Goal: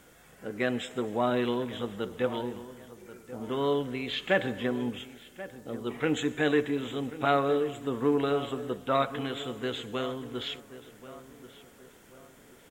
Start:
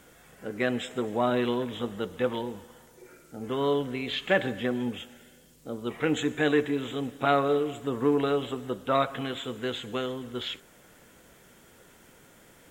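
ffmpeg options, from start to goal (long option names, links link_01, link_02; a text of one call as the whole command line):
ffmpeg -i in.wav -filter_complex "[0:a]asplit=2[link_01][link_02];[link_02]adelay=1085,lowpass=frequency=2000:poles=1,volume=-15dB,asplit=2[link_03][link_04];[link_04]adelay=1085,lowpass=frequency=2000:poles=1,volume=0.41,asplit=2[link_05][link_06];[link_06]adelay=1085,lowpass=frequency=2000:poles=1,volume=0.41,asplit=2[link_07][link_08];[link_08]adelay=1085,lowpass=frequency=2000:poles=1,volume=0.41[link_09];[link_01][link_03][link_05][link_07][link_09]amix=inputs=5:normalize=0,volume=-1.5dB" out.wav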